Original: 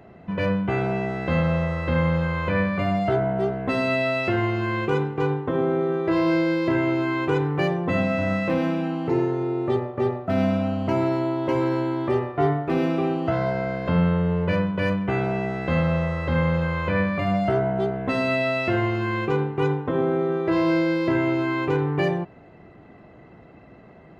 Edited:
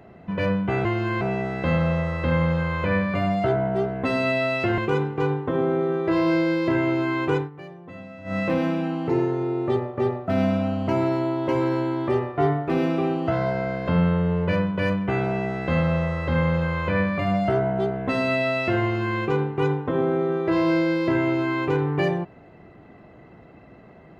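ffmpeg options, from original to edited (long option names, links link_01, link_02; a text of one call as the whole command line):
ffmpeg -i in.wav -filter_complex "[0:a]asplit=6[link_01][link_02][link_03][link_04][link_05][link_06];[link_01]atrim=end=0.852[link_07];[link_02]atrim=start=4.418:end=4.782[link_08];[link_03]atrim=start=0.848:end=4.422[link_09];[link_04]atrim=start=4.778:end=7.5,asetpts=PTS-STARTPTS,afade=type=out:start_time=2.572:duration=0.15:silence=0.133352[link_10];[link_05]atrim=start=7.5:end=8.24,asetpts=PTS-STARTPTS,volume=-17.5dB[link_11];[link_06]atrim=start=8.24,asetpts=PTS-STARTPTS,afade=type=in:duration=0.15:silence=0.133352[link_12];[link_07][link_08]acrossfade=duration=0.004:curve1=hsin:curve2=hsin[link_13];[link_13][link_09]acrossfade=duration=0.004:curve1=hsin:curve2=hsin[link_14];[link_10][link_11][link_12]concat=n=3:v=0:a=1[link_15];[link_14][link_15]acrossfade=duration=0.004:curve1=hsin:curve2=hsin" out.wav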